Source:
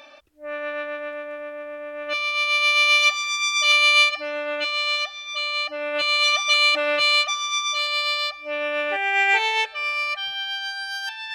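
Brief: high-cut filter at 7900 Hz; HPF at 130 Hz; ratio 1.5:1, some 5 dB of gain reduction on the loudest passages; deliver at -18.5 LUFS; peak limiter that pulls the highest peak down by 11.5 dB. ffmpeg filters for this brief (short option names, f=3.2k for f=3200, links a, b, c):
-af "highpass=130,lowpass=7.9k,acompressor=threshold=-28dB:ratio=1.5,volume=11dB,alimiter=limit=-13.5dB:level=0:latency=1"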